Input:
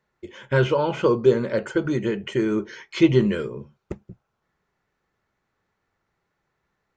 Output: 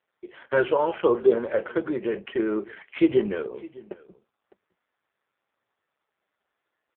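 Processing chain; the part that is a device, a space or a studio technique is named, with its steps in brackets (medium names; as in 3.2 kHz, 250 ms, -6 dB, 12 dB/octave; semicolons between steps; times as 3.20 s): 1.01–2.32 s: gate with hold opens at -28 dBFS; satellite phone (band-pass 370–3200 Hz; delay 607 ms -21.5 dB; trim +1.5 dB; AMR-NB 5.15 kbps 8 kHz)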